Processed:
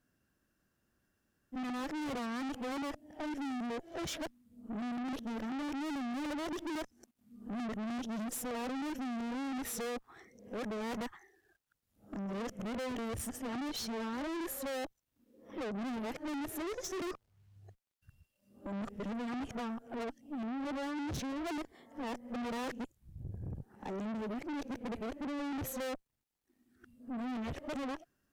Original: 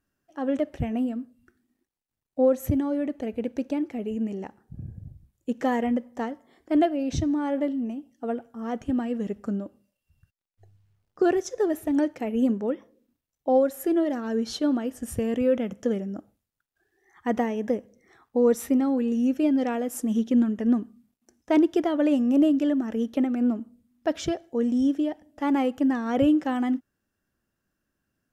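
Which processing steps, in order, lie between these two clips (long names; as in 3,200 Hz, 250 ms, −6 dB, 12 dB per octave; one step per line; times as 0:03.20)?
played backwards from end to start
tube saturation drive 40 dB, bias 0.5
level +3 dB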